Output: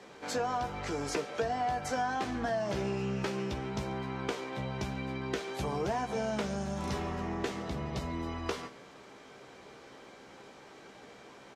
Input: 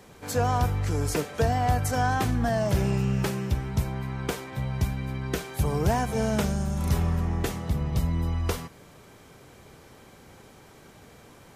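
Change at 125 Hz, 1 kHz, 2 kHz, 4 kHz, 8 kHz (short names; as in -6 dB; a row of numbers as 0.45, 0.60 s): -14.0, -4.5, -4.5, -3.5, -8.0 dB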